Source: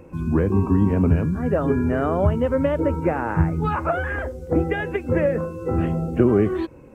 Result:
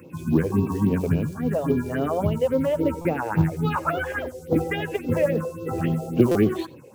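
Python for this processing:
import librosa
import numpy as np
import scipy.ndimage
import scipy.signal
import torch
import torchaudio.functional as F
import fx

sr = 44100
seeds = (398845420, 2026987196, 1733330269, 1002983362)

y = scipy.signal.sosfilt(scipy.signal.butter(4, 110.0, 'highpass', fs=sr, output='sos'), x)
y = fx.high_shelf(y, sr, hz=2400.0, db=9.0)
y = fx.rider(y, sr, range_db=4, speed_s=2.0)
y = fx.quant_float(y, sr, bits=4)
y = fx.phaser_stages(y, sr, stages=4, low_hz=200.0, high_hz=1800.0, hz=3.6, feedback_pct=25)
y = y + 10.0 ** (-21.0 / 20.0) * np.pad(y, (int(89 * sr / 1000.0), 0))[:len(y)]
y = fx.buffer_glitch(y, sr, at_s=(3.01, 6.31), block=256, repeats=6)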